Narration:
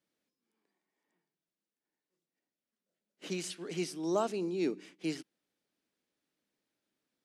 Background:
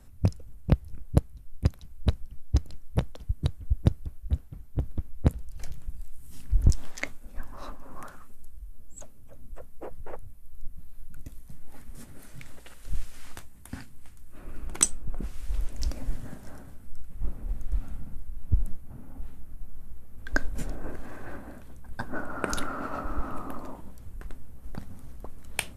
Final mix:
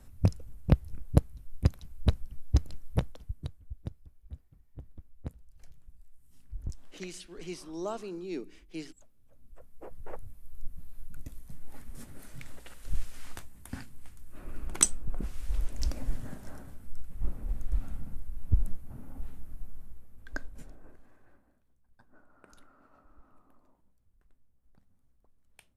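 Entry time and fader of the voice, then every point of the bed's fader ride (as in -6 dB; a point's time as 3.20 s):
3.70 s, -5.0 dB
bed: 2.91 s -0.5 dB
3.76 s -17 dB
9.13 s -17 dB
10.23 s -1 dB
19.59 s -1 dB
21.62 s -28 dB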